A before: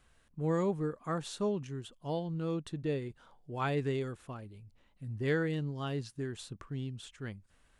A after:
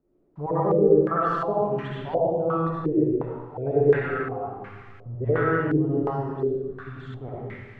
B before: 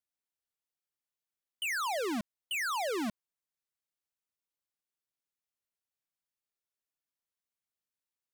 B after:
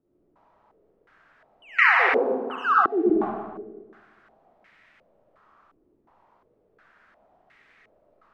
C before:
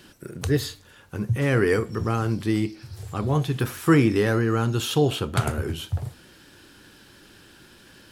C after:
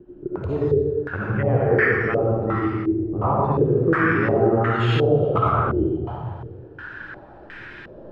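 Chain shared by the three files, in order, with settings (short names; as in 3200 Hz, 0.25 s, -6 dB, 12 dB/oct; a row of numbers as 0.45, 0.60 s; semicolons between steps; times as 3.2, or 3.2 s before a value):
random spectral dropouts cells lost 29%; gate with hold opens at -56 dBFS; bell 230 Hz -5.5 dB 1.1 oct; compressor 2.5:1, threshold -31 dBFS; added noise white -67 dBFS; digital reverb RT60 1.6 s, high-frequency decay 0.75×, pre-delay 30 ms, DRR -6.5 dB; stepped low-pass 2.8 Hz 350–2000 Hz; normalise peaks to -6 dBFS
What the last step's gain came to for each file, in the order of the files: +5.0, +4.0, +4.0 dB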